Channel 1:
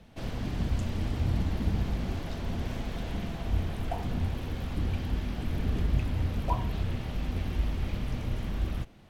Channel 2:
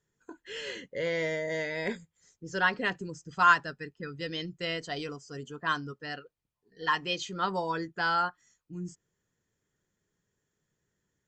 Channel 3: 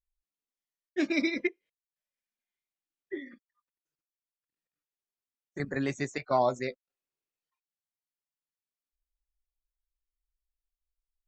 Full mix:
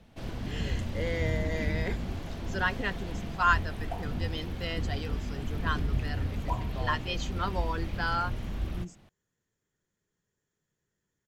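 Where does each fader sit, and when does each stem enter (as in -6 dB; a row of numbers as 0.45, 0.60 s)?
-2.5, -3.0, -16.0 dB; 0.00, 0.00, 0.45 s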